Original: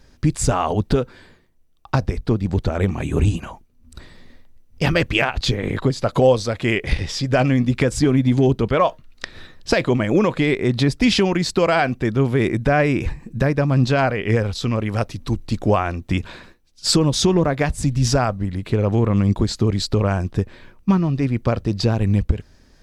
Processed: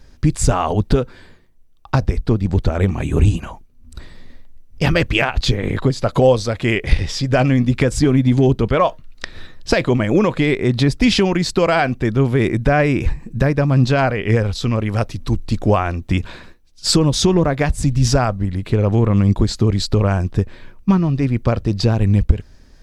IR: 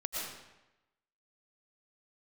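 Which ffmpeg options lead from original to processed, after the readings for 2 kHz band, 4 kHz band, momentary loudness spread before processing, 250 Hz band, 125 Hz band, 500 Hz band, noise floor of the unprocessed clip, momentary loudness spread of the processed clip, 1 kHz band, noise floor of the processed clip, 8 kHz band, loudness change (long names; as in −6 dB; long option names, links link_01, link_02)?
+1.5 dB, +1.5 dB, 8 LU, +2.0 dB, +3.5 dB, +1.5 dB, −53 dBFS, 7 LU, +1.5 dB, −46 dBFS, +1.5 dB, +2.5 dB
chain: -af "lowshelf=frequency=67:gain=7.5,volume=1.5dB"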